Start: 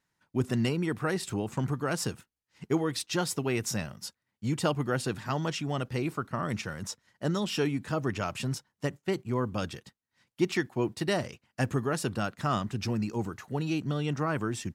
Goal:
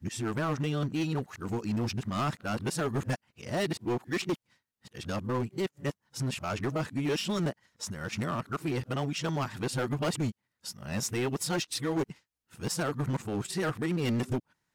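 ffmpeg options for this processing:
-filter_complex "[0:a]areverse,asplit=2[s0][s1];[s1]acrusher=bits=3:mix=0:aa=0.5,volume=0.531[s2];[s0][s2]amix=inputs=2:normalize=0,asoftclip=type=hard:threshold=0.0562"

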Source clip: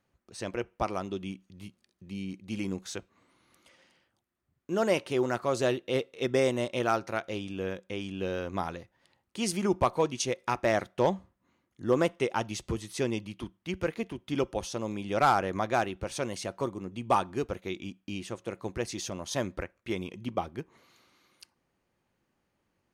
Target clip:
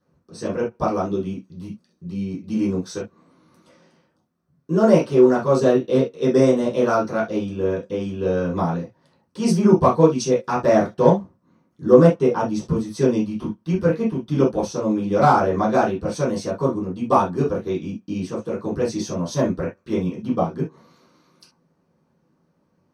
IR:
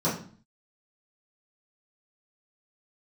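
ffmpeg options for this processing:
-filter_complex "[1:a]atrim=start_sample=2205,atrim=end_sample=3528[s0];[0:a][s0]afir=irnorm=-1:irlink=0,asplit=3[s1][s2][s3];[s1]afade=t=out:st=12.11:d=0.02[s4];[s2]adynamicequalizer=threshold=0.0224:dfrequency=1600:dqfactor=0.7:tfrequency=1600:tqfactor=0.7:attack=5:release=100:ratio=0.375:range=3:mode=cutabove:tftype=highshelf,afade=t=in:st=12.11:d=0.02,afade=t=out:st=13:d=0.02[s5];[s3]afade=t=in:st=13:d=0.02[s6];[s4][s5][s6]amix=inputs=3:normalize=0,volume=0.562"

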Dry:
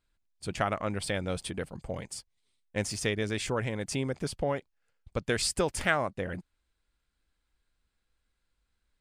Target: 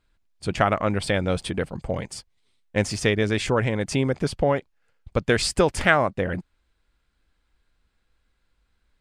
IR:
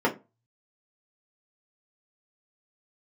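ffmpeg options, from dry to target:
-af "lowpass=f=3900:p=1,volume=2.82"

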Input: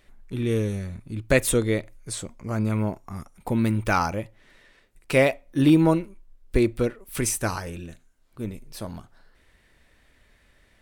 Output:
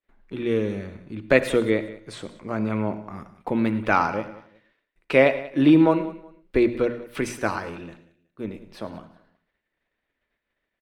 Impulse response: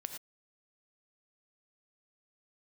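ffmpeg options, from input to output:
-filter_complex "[0:a]bandreject=f=60:t=h:w=6,bandreject=f=120:t=h:w=6,bandreject=f=180:t=h:w=6,bandreject=f=240:t=h:w=6,agate=range=0.0224:threshold=0.00501:ratio=3:detection=peak,acrossover=split=180 3900:gain=0.251 1 0.1[s0][s1][s2];[s0][s1][s2]amix=inputs=3:normalize=0,aecho=1:1:185|370:0.126|0.0327,asplit=2[s3][s4];[1:a]atrim=start_sample=2205[s5];[s4][s5]afir=irnorm=-1:irlink=0,volume=0.891[s6];[s3][s6]amix=inputs=2:normalize=0,volume=0.841"

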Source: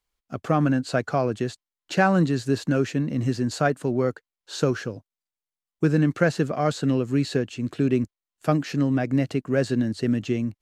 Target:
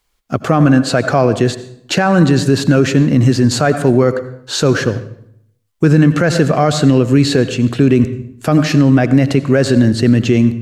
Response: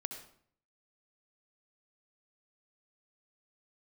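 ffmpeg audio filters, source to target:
-filter_complex "[0:a]asplit=2[s0][s1];[s1]asubboost=boost=3.5:cutoff=120[s2];[1:a]atrim=start_sample=2205,asetrate=35721,aresample=44100[s3];[s2][s3]afir=irnorm=-1:irlink=0,volume=0.562[s4];[s0][s4]amix=inputs=2:normalize=0,alimiter=level_in=4.22:limit=0.891:release=50:level=0:latency=1,volume=0.891"

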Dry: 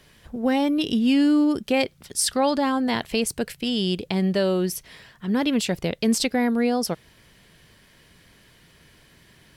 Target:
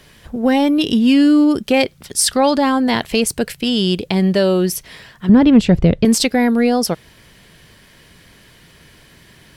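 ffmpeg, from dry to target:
-filter_complex "[0:a]asettb=1/sr,asplit=3[s0][s1][s2];[s0]atrim=end=5.294[s3];[s1]atrim=start=5.29:end=6.05,asetpts=PTS-STARTPTS,afade=t=in:d=0.004:c=qsin,afade=t=out:st=0.756:d=0.004:c=qsin,aemphasis=mode=reproduction:type=riaa[s4];[s2]atrim=start=6.046[s5];[s3][s4]acrossfade=d=0.004:c1=hsin:c2=qsin[s6];[s6][s5]acrossfade=d=0.004:c1=qsin:c2=hsin,asplit=2[s7][s8];[s8]asoftclip=type=tanh:threshold=0.158,volume=0.355[s9];[s7][s9]amix=inputs=2:normalize=0,volume=1.78"

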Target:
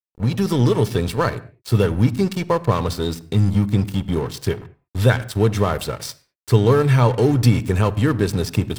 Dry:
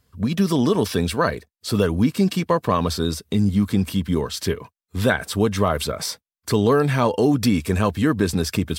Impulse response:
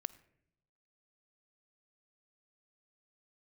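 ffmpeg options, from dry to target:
-filter_complex "[0:a]equalizer=f=120:w=3.7:g=13.5,aeval=exprs='sgn(val(0))*max(abs(val(0))-0.0282,0)':c=same[s0];[1:a]atrim=start_sample=2205,afade=t=out:st=0.27:d=0.01,atrim=end_sample=12348[s1];[s0][s1]afir=irnorm=-1:irlink=0,volume=1.5"

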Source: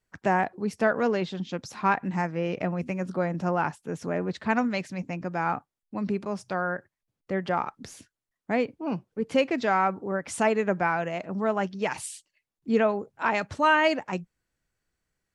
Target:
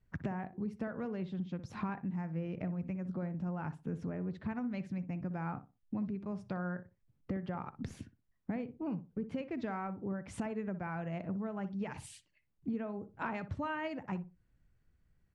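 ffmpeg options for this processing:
-filter_complex "[0:a]bass=f=250:g=15,treble=f=4000:g=-11,acompressor=threshold=0.0224:ratio=12,asplit=2[s0][s1];[s1]adelay=61,lowpass=f=1200:p=1,volume=0.266,asplit=2[s2][s3];[s3]adelay=61,lowpass=f=1200:p=1,volume=0.24,asplit=2[s4][s5];[s5]adelay=61,lowpass=f=1200:p=1,volume=0.24[s6];[s2][s4][s6]amix=inputs=3:normalize=0[s7];[s0][s7]amix=inputs=2:normalize=0,volume=0.794"

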